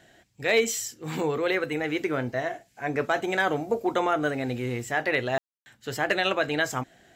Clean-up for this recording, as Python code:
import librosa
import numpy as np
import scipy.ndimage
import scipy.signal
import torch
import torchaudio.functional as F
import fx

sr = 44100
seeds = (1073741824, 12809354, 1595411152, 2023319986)

y = fx.fix_declip(x, sr, threshold_db=-13.0)
y = fx.fix_ambience(y, sr, seeds[0], print_start_s=0.0, print_end_s=0.5, start_s=5.38, end_s=5.66)